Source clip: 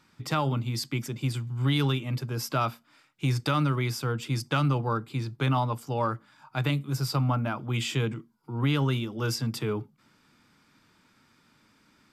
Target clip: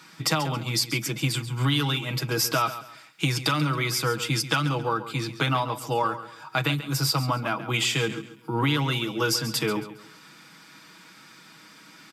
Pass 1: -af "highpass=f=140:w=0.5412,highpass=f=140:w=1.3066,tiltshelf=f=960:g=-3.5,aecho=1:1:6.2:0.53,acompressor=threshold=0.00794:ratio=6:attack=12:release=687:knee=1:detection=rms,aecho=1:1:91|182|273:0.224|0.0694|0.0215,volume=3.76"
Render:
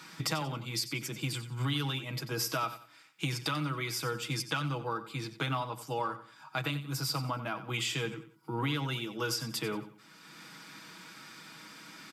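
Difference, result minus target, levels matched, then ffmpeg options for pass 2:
compression: peak gain reduction +9 dB; echo 46 ms early
-af "highpass=f=140:w=0.5412,highpass=f=140:w=1.3066,tiltshelf=f=960:g=-3.5,aecho=1:1:6.2:0.53,acompressor=threshold=0.0266:ratio=6:attack=12:release=687:knee=1:detection=rms,aecho=1:1:137|274|411:0.224|0.0694|0.0215,volume=3.76"

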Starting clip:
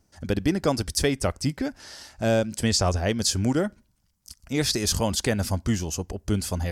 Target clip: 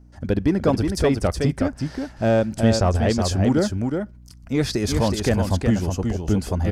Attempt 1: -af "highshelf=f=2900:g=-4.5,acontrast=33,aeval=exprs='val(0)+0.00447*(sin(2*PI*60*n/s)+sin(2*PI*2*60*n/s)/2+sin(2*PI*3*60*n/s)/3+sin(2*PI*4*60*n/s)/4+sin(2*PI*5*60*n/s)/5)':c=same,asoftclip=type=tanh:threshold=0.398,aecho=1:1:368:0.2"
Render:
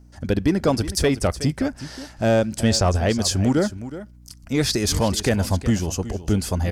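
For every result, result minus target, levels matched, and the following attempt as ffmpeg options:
8 kHz band +6.5 dB; echo-to-direct -9 dB
-af "highshelf=f=2900:g=-13.5,acontrast=33,aeval=exprs='val(0)+0.00447*(sin(2*PI*60*n/s)+sin(2*PI*2*60*n/s)/2+sin(2*PI*3*60*n/s)/3+sin(2*PI*4*60*n/s)/4+sin(2*PI*5*60*n/s)/5)':c=same,asoftclip=type=tanh:threshold=0.398,aecho=1:1:368:0.2"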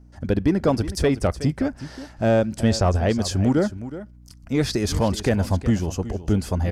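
echo-to-direct -9 dB
-af "highshelf=f=2900:g=-13.5,acontrast=33,aeval=exprs='val(0)+0.00447*(sin(2*PI*60*n/s)+sin(2*PI*2*60*n/s)/2+sin(2*PI*3*60*n/s)/3+sin(2*PI*4*60*n/s)/4+sin(2*PI*5*60*n/s)/5)':c=same,asoftclip=type=tanh:threshold=0.398,aecho=1:1:368:0.562"

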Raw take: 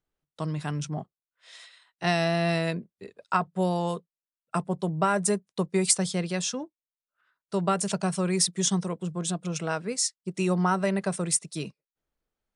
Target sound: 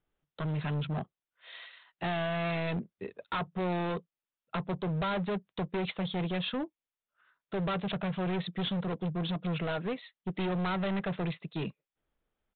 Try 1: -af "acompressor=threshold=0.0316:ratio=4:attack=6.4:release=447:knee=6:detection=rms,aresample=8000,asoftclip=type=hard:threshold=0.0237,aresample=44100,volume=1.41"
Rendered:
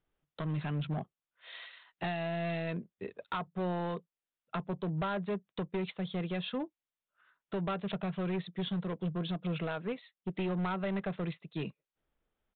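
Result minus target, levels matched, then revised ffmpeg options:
compression: peak gain reduction +9 dB
-af "acompressor=threshold=0.126:ratio=4:attack=6.4:release=447:knee=6:detection=rms,aresample=8000,asoftclip=type=hard:threshold=0.0237,aresample=44100,volume=1.41"

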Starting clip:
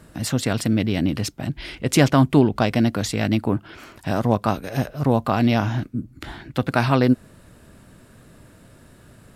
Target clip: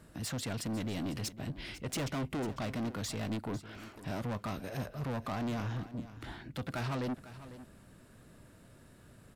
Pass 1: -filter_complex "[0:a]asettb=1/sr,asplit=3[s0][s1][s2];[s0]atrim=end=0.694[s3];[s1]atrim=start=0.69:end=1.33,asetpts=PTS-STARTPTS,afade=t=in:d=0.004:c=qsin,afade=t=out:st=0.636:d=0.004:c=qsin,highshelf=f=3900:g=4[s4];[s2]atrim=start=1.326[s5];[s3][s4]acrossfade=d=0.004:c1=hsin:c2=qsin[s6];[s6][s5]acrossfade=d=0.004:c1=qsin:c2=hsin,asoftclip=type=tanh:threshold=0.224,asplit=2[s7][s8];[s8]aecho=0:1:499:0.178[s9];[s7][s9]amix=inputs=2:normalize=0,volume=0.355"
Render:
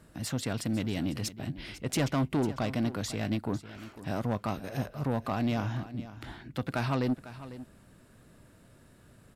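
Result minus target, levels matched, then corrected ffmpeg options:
saturation: distortion -8 dB
-filter_complex "[0:a]asettb=1/sr,asplit=3[s0][s1][s2];[s0]atrim=end=0.694[s3];[s1]atrim=start=0.69:end=1.33,asetpts=PTS-STARTPTS,afade=t=in:d=0.004:c=qsin,afade=t=out:st=0.636:d=0.004:c=qsin,highshelf=f=3900:g=4[s4];[s2]atrim=start=1.326[s5];[s3][s4]acrossfade=d=0.004:c1=hsin:c2=qsin[s6];[s6][s5]acrossfade=d=0.004:c1=qsin:c2=hsin,asoftclip=type=tanh:threshold=0.0668,asplit=2[s7][s8];[s8]aecho=0:1:499:0.178[s9];[s7][s9]amix=inputs=2:normalize=0,volume=0.355"

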